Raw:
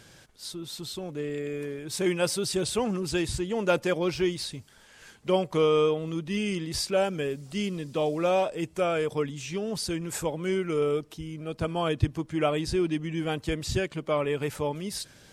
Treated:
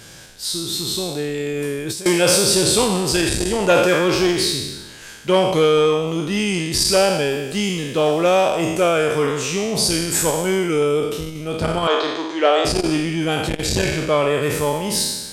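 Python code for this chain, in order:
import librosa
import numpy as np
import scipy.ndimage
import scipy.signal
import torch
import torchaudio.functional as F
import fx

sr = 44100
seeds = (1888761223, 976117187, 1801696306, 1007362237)

y = fx.spec_trails(x, sr, decay_s=1.11)
y = fx.high_shelf(y, sr, hz=4100.0, db=5.5)
y = fx.over_compress(y, sr, threshold_db=-33.0, ratio=-1.0, at=(1.4, 2.06))
y = fx.cabinet(y, sr, low_hz=360.0, low_slope=24, high_hz=6100.0, hz=(870.0, 2500.0, 3800.0), db=(3, -4, 7), at=(11.87, 12.65))
y = fx.transformer_sat(y, sr, knee_hz=750.0)
y = F.gain(torch.from_numpy(y), 8.0).numpy()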